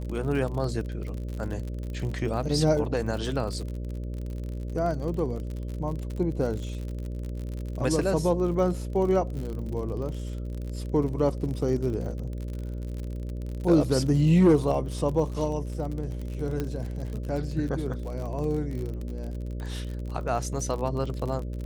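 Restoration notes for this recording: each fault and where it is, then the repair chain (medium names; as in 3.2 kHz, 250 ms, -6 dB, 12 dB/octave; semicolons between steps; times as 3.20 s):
buzz 60 Hz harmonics 10 -33 dBFS
crackle 48 per s -33 dBFS
16.60 s: pop -17 dBFS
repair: de-click; de-hum 60 Hz, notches 10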